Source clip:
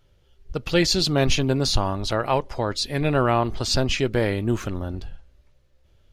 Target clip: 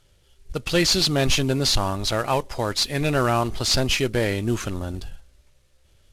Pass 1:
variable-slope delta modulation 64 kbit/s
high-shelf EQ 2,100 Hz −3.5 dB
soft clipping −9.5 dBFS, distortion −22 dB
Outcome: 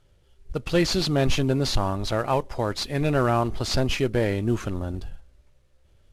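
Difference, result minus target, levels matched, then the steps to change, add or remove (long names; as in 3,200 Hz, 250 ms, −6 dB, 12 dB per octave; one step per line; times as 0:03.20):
4,000 Hz band −4.5 dB
change: high-shelf EQ 2,100 Hz +6.5 dB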